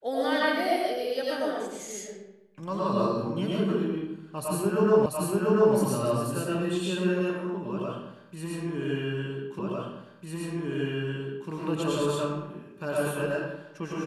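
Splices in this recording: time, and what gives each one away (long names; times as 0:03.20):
0:05.06: the same again, the last 0.69 s
0:09.59: the same again, the last 1.9 s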